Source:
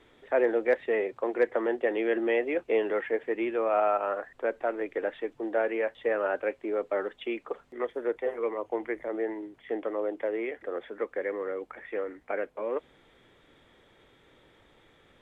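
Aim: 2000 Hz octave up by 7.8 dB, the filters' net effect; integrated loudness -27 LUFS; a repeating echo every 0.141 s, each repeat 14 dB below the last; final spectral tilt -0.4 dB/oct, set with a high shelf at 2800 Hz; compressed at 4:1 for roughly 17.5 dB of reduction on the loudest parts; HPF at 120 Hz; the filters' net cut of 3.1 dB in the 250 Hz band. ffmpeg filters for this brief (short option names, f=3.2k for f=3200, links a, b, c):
-af "highpass=120,equalizer=f=250:t=o:g=-5.5,equalizer=f=2k:t=o:g=8,highshelf=f=2.8k:g=3.5,acompressor=threshold=-41dB:ratio=4,aecho=1:1:141|282:0.2|0.0399,volume=15.5dB"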